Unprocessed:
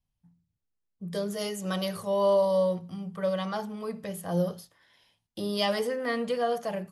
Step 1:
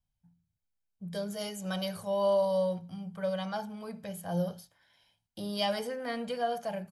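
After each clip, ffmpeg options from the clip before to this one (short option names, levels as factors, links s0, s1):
-af "aecho=1:1:1.3:0.47,volume=0.596"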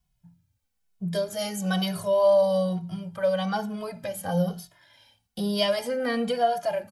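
-filter_complex "[0:a]asplit=2[s0][s1];[s1]acompressor=threshold=0.0112:ratio=6,volume=0.944[s2];[s0][s2]amix=inputs=2:normalize=0,asplit=2[s3][s4];[s4]adelay=2.3,afreqshift=-1.1[s5];[s3][s5]amix=inputs=2:normalize=1,volume=2.24"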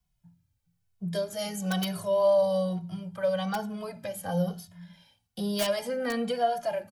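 -filter_complex "[0:a]acrossover=split=140|870[s0][s1][s2];[s0]aecho=1:1:423:0.422[s3];[s2]aeval=exprs='(mod(11.9*val(0)+1,2)-1)/11.9':c=same[s4];[s3][s1][s4]amix=inputs=3:normalize=0,volume=0.708"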